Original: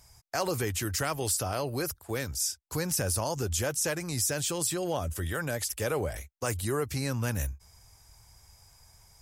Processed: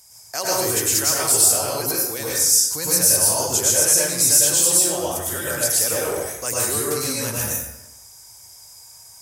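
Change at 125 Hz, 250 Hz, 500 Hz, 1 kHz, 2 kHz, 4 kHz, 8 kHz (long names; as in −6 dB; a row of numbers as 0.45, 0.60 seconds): −0.5, +4.0, +7.0, +7.0, +7.0, +13.0, +17.0 decibels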